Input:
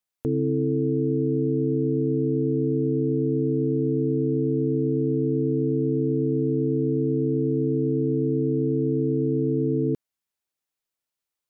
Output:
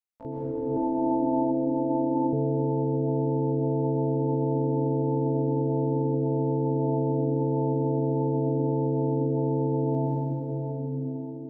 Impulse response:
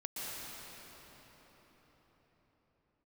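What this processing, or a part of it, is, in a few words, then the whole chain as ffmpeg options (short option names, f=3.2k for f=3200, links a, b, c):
shimmer-style reverb: -filter_complex "[0:a]asplit=2[a][b];[b]asetrate=88200,aresample=44100,atempo=0.5,volume=-7dB[c];[a][c]amix=inputs=2:normalize=0[d];[1:a]atrim=start_sample=2205[e];[d][e]afir=irnorm=-1:irlink=0,asettb=1/sr,asplit=3[f][g][h];[f]atrim=end=0.764[i];[g]atrim=start=0.76:end=2.33,asetpts=PTS-STARTPTS,afade=t=in:d=0.004:c=qsin,afade=t=out:st=1.566:d=0.004:c=qsin,aecho=1:1:3.4:0.79,atrim=end_sample=69237[j];[h]atrim=start=2.326[k];[i][j]acrossfade=d=0.004:c1=hsin:c2=qsin[l];[l][k]acrossfade=d=0.004:c1=qsin:c2=hsin,volume=-6dB"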